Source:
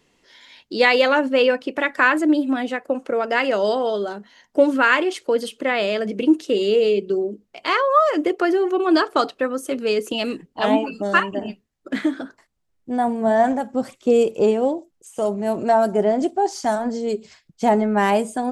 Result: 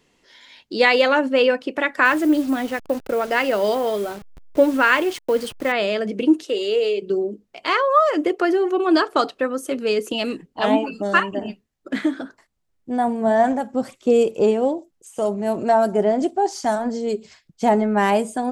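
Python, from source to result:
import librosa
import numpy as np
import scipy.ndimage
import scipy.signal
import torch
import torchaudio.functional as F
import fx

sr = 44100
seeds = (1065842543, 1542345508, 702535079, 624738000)

y = fx.delta_hold(x, sr, step_db=-34.0, at=(2.05, 5.72))
y = fx.highpass(y, sr, hz=430.0, slope=12, at=(6.43, 7.02))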